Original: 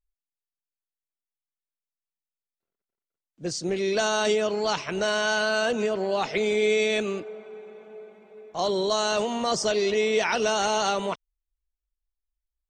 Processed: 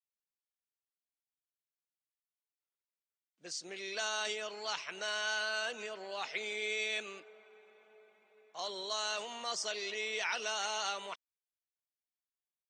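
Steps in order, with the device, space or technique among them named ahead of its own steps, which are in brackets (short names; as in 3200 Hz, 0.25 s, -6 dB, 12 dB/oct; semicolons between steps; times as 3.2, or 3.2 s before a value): filter by subtraction (in parallel: LPF 2100 Hz 12 dB/oct + phase invert); on the sum: gain -9 dB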